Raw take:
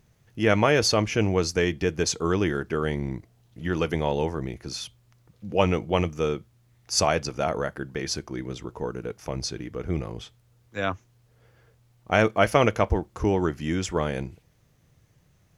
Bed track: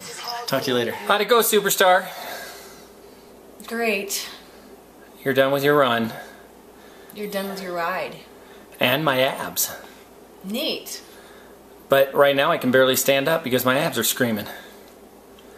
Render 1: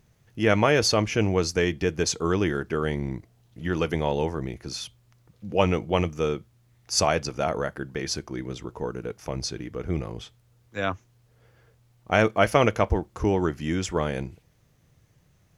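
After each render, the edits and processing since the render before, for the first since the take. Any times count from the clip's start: no audible change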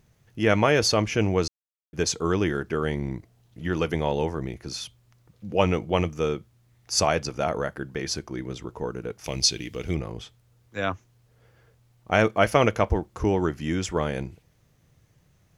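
1.48–1.93 s: mute; 9.24–9.95 s: resonant high shelf 2 kHz +10 dB, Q 1.5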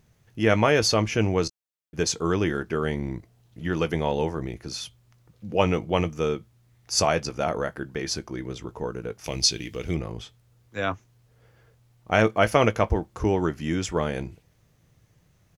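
doubling 18 ms -14 dB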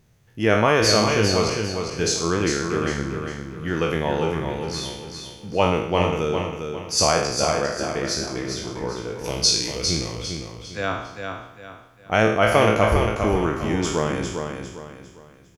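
spectral sustain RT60 0.75 s; feedback delay 402 ms, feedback 35%, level -6 dB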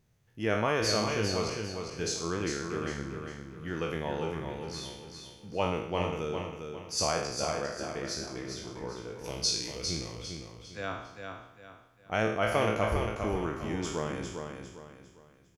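trim -10.5 dB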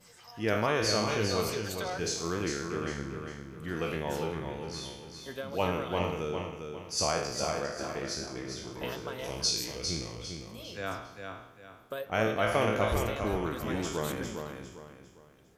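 add bed track -21.5 dB

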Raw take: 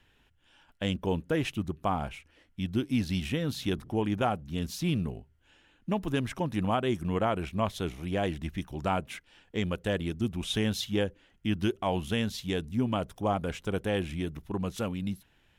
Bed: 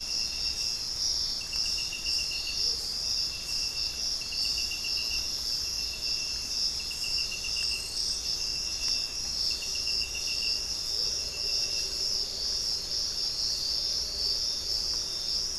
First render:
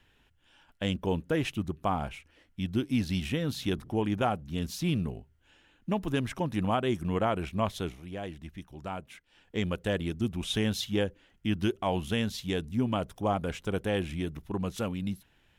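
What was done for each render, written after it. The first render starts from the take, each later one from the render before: 7.71–9.59 s: dip -8.5 dB, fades 0.31 s equal-power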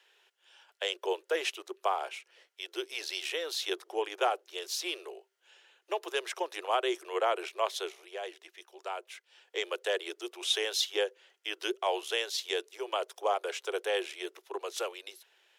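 steep high-pass 360 Hz 96 dB/octave; peaking EQ 5.2 kHz +6.5 dB 1.6 oct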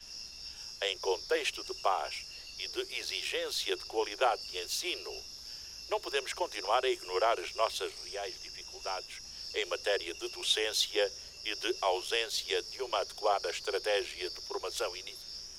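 add bed -14.5 dB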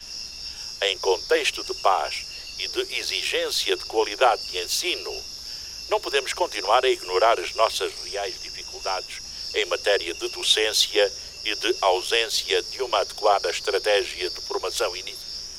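trim +10 dB

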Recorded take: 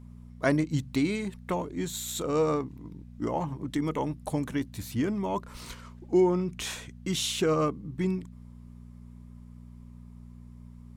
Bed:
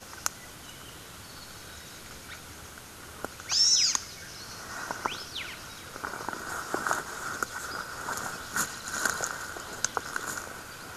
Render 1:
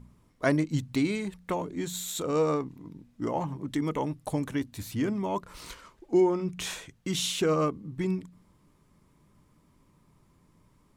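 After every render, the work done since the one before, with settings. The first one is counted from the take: de-hum 60 Hz, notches 4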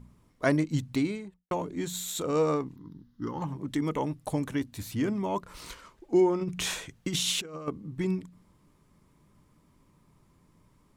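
0.88–1.51 s: studio fade out; 2.76–3.42 s: static phaser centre 2.4 kHz, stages 6; 6.41–7.68 s: compressor with a negative ratio -31 dBFS, ratio -0.5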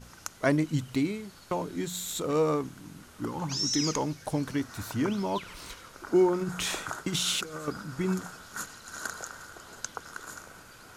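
add bed -8 dB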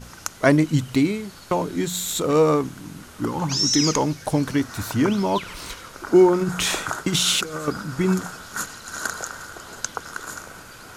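trim +8.5 dB

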